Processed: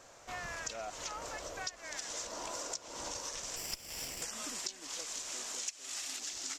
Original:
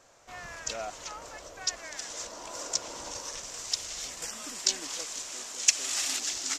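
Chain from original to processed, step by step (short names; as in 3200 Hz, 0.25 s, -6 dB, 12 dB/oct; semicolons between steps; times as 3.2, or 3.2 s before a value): 3.56–4.22 minimum comb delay 0.39 ms; compressor 20:1, threshold -40 dBFS, peak gain reduction 25.5 dB; gain +3 dB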